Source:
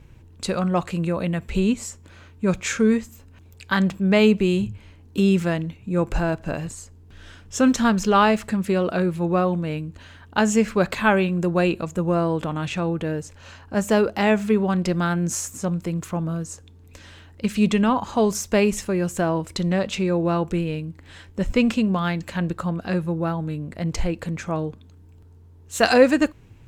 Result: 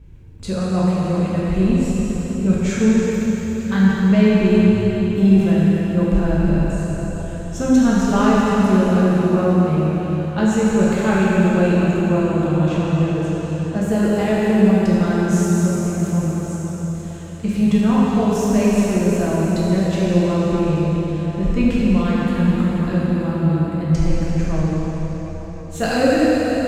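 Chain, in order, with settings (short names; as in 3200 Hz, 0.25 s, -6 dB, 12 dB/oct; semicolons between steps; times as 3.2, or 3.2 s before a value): low shelf 340 Hz +10.5 dB; soft clip -3 dBFS, distortion -23 dB; plate-style reverb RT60 4.8 s, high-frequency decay 0.95×, DRR -8 dB; gain -8.5 dB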